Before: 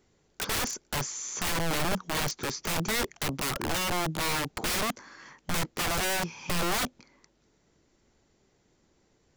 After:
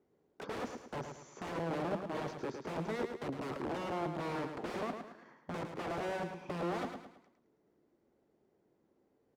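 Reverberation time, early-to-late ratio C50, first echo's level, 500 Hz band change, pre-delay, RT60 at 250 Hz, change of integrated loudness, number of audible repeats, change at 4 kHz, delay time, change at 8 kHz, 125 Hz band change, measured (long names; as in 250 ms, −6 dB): no reverb audible, no reverb audible, −7.0 dB, −3.0 dB, no reverb audible, no reverb audible, −10.0 dB, 4, −20.0 dB, 108 ms, −26.0 dB, −8.5 dB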